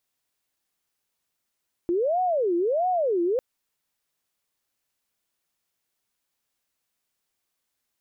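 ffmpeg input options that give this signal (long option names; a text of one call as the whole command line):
ffmpeg -f lavfi -i "aevalsrc='0.0944*sin(2*PI*(540*t-199/(2*PI*1.5)*sin(2*PI*1.5*t)))':duration=1.5:sample_rate=44100" out.wav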